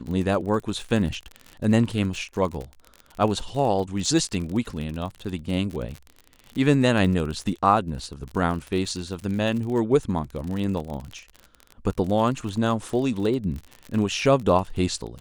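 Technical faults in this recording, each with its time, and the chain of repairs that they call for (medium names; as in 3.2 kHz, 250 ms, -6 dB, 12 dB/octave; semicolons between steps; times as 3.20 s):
crackle 45 per s -30 dBFS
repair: de-click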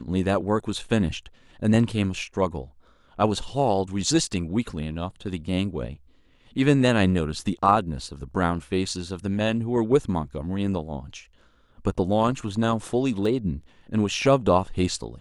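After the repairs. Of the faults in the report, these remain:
nothing left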